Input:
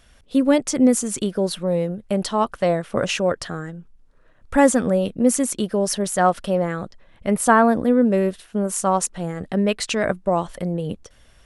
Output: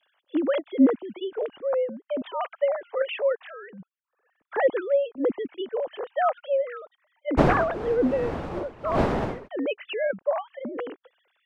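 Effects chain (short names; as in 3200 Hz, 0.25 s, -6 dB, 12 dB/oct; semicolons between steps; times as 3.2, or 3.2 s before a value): sine-wave speech; 7.37–9.47 wind noise 620 Hz -17 dBFS; gain -6.5 dB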